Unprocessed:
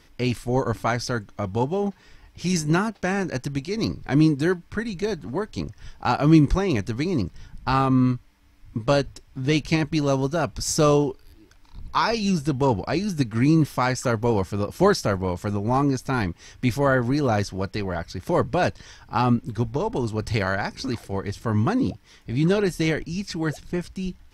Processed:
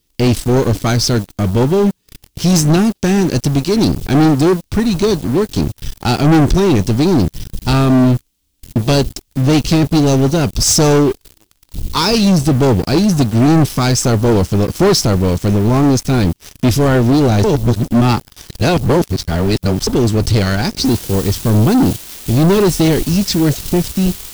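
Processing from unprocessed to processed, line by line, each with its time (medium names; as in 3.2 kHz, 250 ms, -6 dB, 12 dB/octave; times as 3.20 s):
17.44–19.87 s: reverse
20.85 s: noise floor step -57 dB -44 dB
whole clip: high-order bell 1.1 kHz -11 dB 2.3 oct; waveshaping leveller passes 5; trim -1.5 dB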